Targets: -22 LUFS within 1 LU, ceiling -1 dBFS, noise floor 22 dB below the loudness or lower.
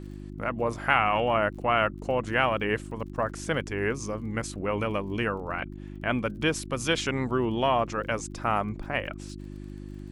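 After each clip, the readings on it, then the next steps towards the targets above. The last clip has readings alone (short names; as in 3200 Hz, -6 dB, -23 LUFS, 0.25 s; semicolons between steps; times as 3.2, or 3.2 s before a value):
ticks 28/s; hum 50 Hz; harmonics up to 350 Hz; hum level -37 dBFS; loudness -28.0 LUFS; peak -6.0 dBFS; loudness target -22.0 LUFS
-> de-click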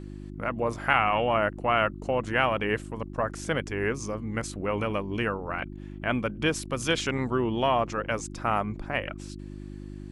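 ticks 0/s; hum 50 Hz; harmonics up to 350 Hz; hum level -37 dBFS
-> de-hum 50 Hz, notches 7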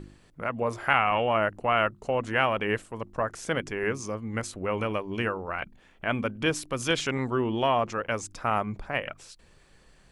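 hum none; loudness -28.5 LUFS; peak -6.5 dBFS; loudness target -22.0 LUFS
-> gain +6.5 dB; limiter -1 dBFS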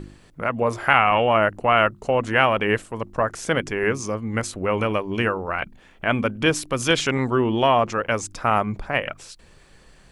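loudness -22.0 LUFS; peak -1.0 dBFS; noise floor -52 dBFS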